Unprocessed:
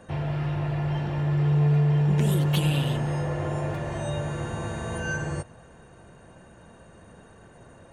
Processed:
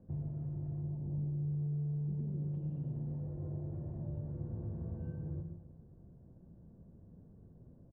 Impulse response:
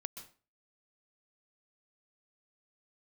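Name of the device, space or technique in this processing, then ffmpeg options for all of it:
television next door: -filter_complex "[0:a]asettb=1/sr,asplit=3[link_01][link_02][link_03];[link_01]atrim=end=0.824[link_04];[link_02]atrim=start=0.82:end=1.5,asetpts=PTS-STARTPTS,afade=type=in:duration=0.004:curve=qsin,afade=type=out:start_time=0.676:duration=0.004:curve=qsin,lowpass=1000[link_05];[link_03]atrim=start=1.496[link_06];[link_04][link_05]acrossfade=duration=0.004:curve1=hsin:curve2=qsin[link_07];[link_07][link_06]acrossfade=duration=0.004:curve1=qsin:curve2=hsin,acompressor=threshold=-30dB:ratio=4,lowpass=250[link_08];[1:a]atrim=start_sample=2205[link_09];[link_08][link_09]afir=irnorm=-1:irlink=0,asplit=2[link_10][link_11];[link_11]adelay=326.5,volume=-19dB,highshelf=frequency=4000:gain=-7.35[link_12];[link_10][link_12]amix=inputs=2:normalize=0,volume=-1.5dB"

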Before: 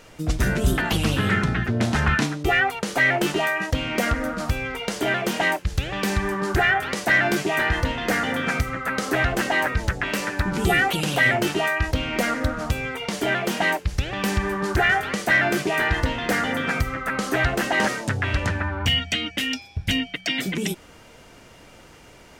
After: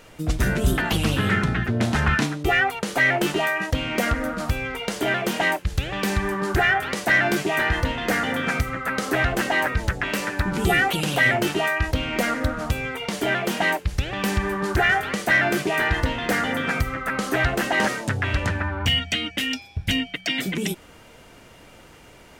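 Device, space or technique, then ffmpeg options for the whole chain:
exciter from parts: -filter_complex "[0:a]asplit=2[link_01][link_02];[link_02]highpass=frequency=4900:poles=1,asoftclip=type=tanh:threshold=-35.5dB,highpass=frequency=4300:width=0.5412,highpass=frequency=4300:width=1.3066,volume=-8.5dB[link_03];[link_01][link_03]amix=inputs=2:normalize=0"

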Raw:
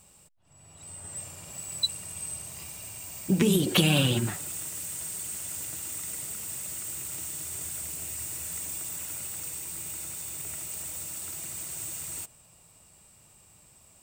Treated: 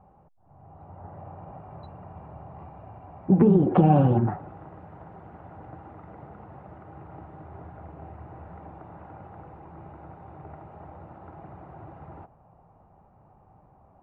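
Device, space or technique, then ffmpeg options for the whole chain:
under water: -af "lowpass=frequency=1200:width=0.5412,lowpass=frequency=1200:width=1.3066,equalizer=frequency=780:width_type=o:width=0.26:gain=11.5,volume=5.5dB"

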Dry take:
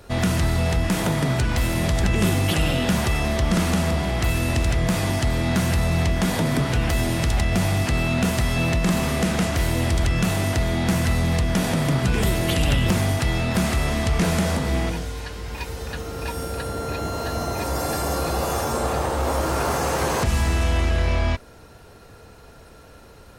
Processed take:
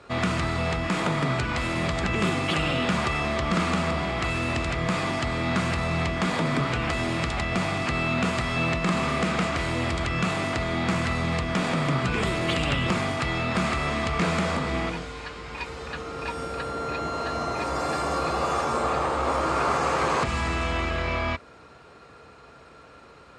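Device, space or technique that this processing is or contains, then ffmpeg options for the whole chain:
car door speaker: -af "highpass=88,equalizer=frequency=100:width_type=q:width=4:gain=-9,equalizer=frequency=200:width_type=q:width=4:gain=-3,equalizer=frequency=1200:width_type=q:width=4:gain=9,equalizer=frequency=2300:width_type=q:width=4:gain=5,equalizer=frequency=5900:width_type=q:width=4:gain=-7,lowpass=frequency=7400:width=0.5412,lowpass=frequency=7400:width=1.3066,volume=-2.5dB"

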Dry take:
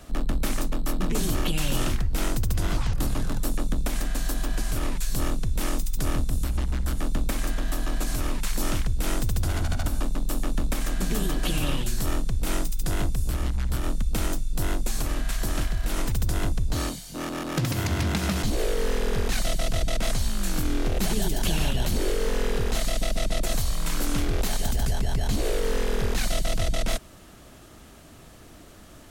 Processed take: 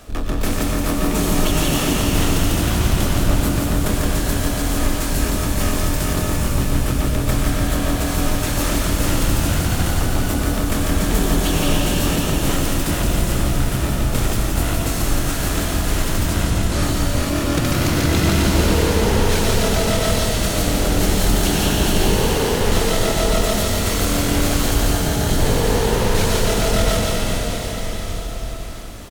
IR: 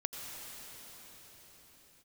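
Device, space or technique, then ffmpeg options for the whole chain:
shimmer-style reverb: -filter_complex "[0:a]asplit=2[link_01][link_02];[link_02]asetrate=88200,aresample=44100,atempo=0.5,volume=-8dB[link_03];[link_01][link_03]amix=inputs=2:normalize=0[link_04];[1:a]atrim=start_sample=2205[link_05];[link_04][link_05]afir=irnorm=-1:irlink=0,asettb=1/sr,asplit=3[link_06][link_07][link_08];[link_06]atrim=end=16.294[link_09];[link_07]atrim=start=16.29:end=16.83,asetpts=PTS-STARTPTS,afade=type=in:duration=0.004:curve=qsin,afade=type=out:start_time=0.536:duration=0.004:curve=qsin,lowpass=11000[link_10];[link_08]atrim=start=16.826[link_11];[link_09][link_10]acrossfade=duration=0.004:curve1=hsin:curve2=qsin[link_12];[link_12][link_11]acrossfade=duration=0.004:curve1=qsin:curve2=hsin,lowshelf=frequency=120:gain=-4,aecho=1:1:170|408|741.2|1208|1861:0.631|0.398|0.251|0.158|0.1,volume=5.5dB"

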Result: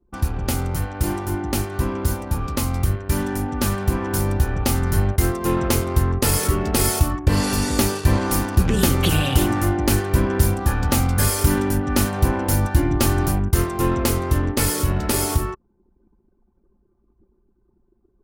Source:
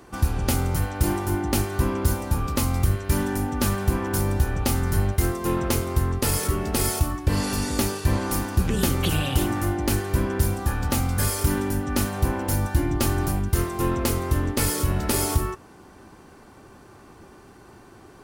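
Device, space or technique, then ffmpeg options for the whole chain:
voice memo with heavy noise removal: -af "anlmdn=3.98,dynaudnorm=framelen=700:gausssize=13:maxgain=5dB"

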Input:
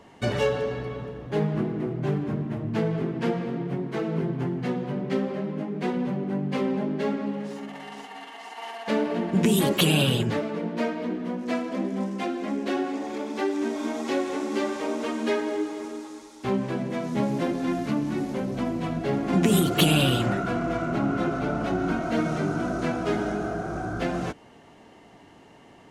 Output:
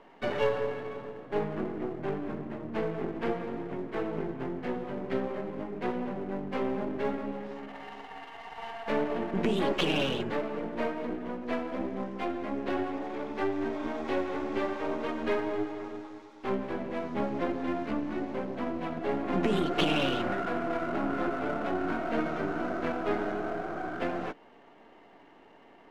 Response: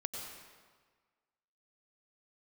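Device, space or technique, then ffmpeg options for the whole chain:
crystal radio: -af "highpass=280,lowpass=2600,aeval=exprs='if(lt(val(0),0),0.447*val(0),val(0))':channel_layout=same"

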